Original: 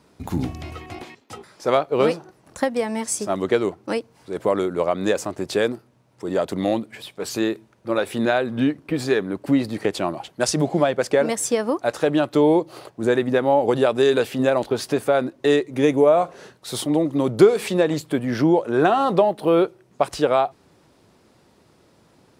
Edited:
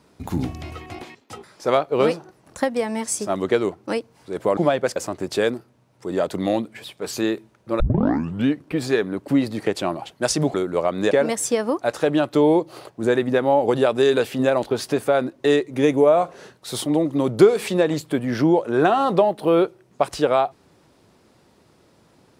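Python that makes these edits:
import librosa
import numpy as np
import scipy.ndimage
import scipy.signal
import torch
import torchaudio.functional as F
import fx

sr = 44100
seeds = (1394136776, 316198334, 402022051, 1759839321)

y = fx.edit(x, sr, fx.swap(start_s=4.57, length_s=0.57, other_s=10.72, other_length_s=0.39),
    fx.tape_start(start_s=7.98, length_s=0.66), tone=tone)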